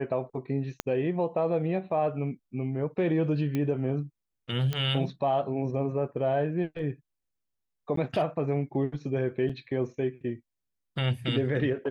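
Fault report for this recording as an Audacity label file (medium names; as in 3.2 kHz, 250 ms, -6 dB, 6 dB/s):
0.800000	0.800000	pop -14 dBFS
3.550000	3.550000	pop -18 dBFS
4.730000	4.730000	pop -17 dBFS
7.960000	7.970000	dropout 13 ms
9.490000	9.500000	dropout 5.3 ms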